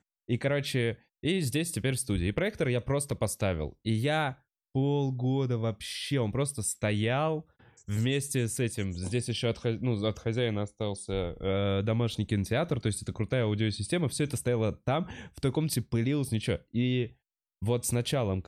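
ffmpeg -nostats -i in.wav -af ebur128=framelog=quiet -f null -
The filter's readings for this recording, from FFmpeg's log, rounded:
Integrated loudness:
  I:         -30.4 LUFS
  Threshold: -40.5 LUFS
Loudness range:
  LRA:         1.0 LU
  Threshold: -50.5 LUFS
  LRA low:   -31.0 LUFS
  LRA high:  -30.0 LUFS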